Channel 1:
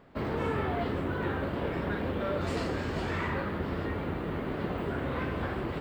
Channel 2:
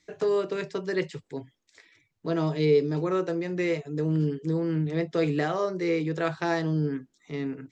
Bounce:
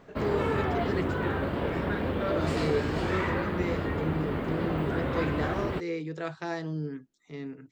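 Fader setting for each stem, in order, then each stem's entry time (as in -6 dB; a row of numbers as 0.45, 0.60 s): +2.5, -7.0 dB; 0.00, 0.00 s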